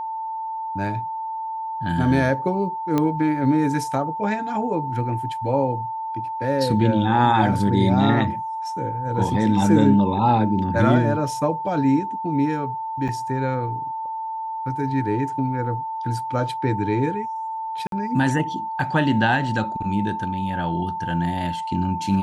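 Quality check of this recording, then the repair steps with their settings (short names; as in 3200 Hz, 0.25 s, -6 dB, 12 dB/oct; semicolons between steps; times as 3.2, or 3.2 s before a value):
tone 890 Hz -26 dBFS
2.98 pop -9 dBFS
13.08–13.09 gap 6.7 ms
17.87–17.92 gap 52 ms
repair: de-click; notch 890 Hz, Q 30; interpolate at 13.08, 6.7 ms; interpolate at 17.87, 52 ms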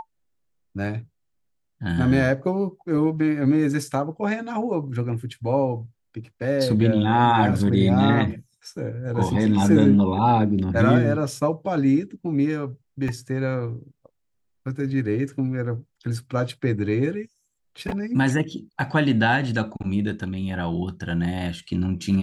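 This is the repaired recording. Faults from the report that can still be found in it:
none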